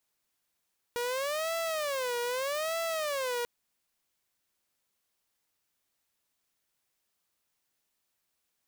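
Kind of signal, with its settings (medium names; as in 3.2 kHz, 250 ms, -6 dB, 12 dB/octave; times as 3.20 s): siren wail 479–664 Hz 0.81 per s saw -27.5 dBFS 2.49 s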